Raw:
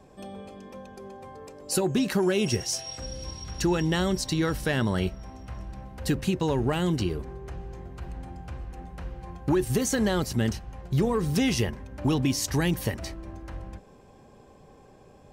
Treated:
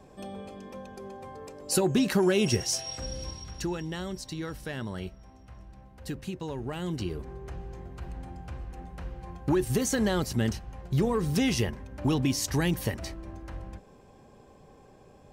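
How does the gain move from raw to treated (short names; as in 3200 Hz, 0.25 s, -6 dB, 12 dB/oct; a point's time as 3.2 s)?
3.2 s +0.5 dB
3.84 s -10 dB
6.63 s -10 dB
7.38 s -1.5 dB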